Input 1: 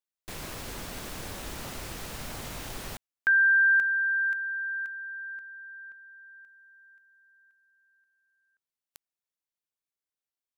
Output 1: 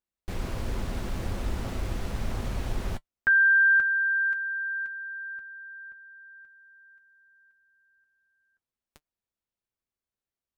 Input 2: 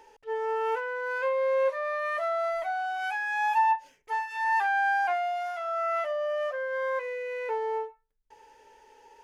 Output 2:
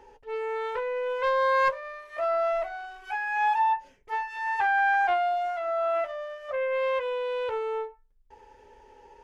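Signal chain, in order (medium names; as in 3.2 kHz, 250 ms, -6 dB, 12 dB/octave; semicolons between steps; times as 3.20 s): tilt EQ -2.5 dB/octave; comb of notches 150 Hz; loudspeaker Doppler distortion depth 0.47 ms; trim +3 dB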